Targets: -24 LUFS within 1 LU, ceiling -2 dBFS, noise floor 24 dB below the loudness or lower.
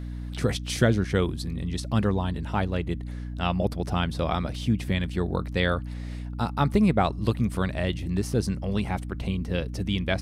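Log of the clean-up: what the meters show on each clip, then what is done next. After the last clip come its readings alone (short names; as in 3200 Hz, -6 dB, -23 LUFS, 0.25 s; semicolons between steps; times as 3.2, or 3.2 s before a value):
hum 60 Hz; harmonics up to 300 Hz; hum level -31 dBFS; loudness -27.0 LUFS; peak -8.5 dBFS; loudness target -24.0 LUFS
-> de-hum 60 Hz, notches 5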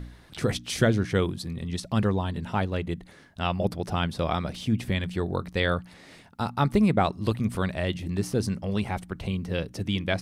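hum none; loudness -28.0 LUFS; peak -8.0 dBFS; loudness target -24.0 LUFS
-> gain +4 dB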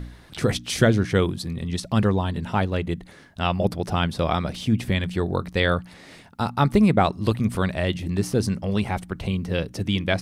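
loudness -24.0 LUFS; peak -4.0 dBFS; noise floor -48 dBFS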